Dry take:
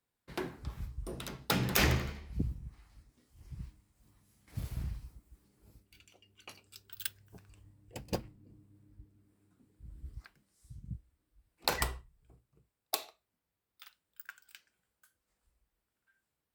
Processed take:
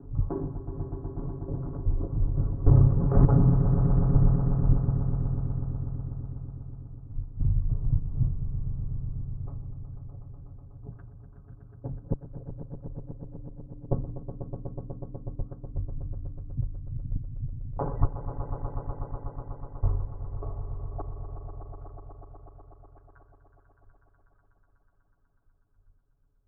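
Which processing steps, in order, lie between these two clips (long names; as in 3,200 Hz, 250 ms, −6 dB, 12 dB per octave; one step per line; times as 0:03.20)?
slices reordered back to front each 185 ms, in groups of 4
Chebyshev low-pass filter 1,200 Hz, order 4
spectral tilt −4.5 dB per octave
time stretch by overlap-add 1.6×, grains 38 ms
echo that builds up and dies away 123 ms, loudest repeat 5, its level −11 dB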